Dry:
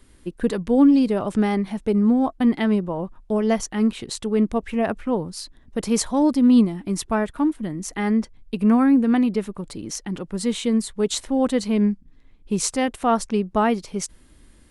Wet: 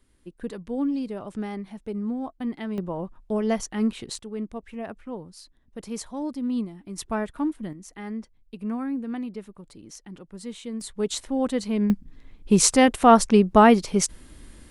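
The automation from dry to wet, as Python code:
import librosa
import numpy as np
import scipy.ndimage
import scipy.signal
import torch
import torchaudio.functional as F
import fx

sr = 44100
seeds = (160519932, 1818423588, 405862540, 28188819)

y = fx.gain(x, sr, db=fx.steps((0.0, -11.5), (2.78, -4.0), (4.19, -12.5), (6.98, -5.5), (7.73, -13.0), (10.81, -4.5), (11.9, 5.5)))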